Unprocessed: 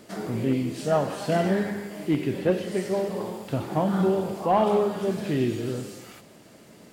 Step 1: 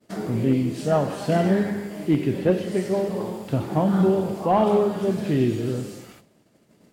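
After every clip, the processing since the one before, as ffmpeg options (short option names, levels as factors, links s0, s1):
-af "agate=range=0.0224:threshold=0.00891:ratio=3:detection=peak,lowshelf=f=410:g=5.5"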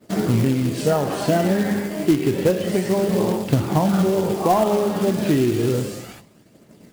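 -af "acompressor=threshold=0.0891:ratio=16,aphaser=in_gain=1:out_gain=1:delay=3.9:decay=0.3:speed=0.3:type=triangular,acrusher=bits=4:mode=log:mix=0:aa=0.000001,volume=2.24"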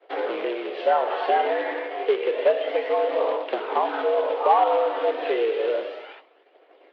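-af "highpass=f=350:t=q:w=0.5412,highpass=f=350:t=q:w=1.307,lowpass=f=3300:t=q:w=0.5176,lowpass=f=3300:t=q:w=0.7071,lowpass=f=3300:t=q:w=1.932,afreqshift=92"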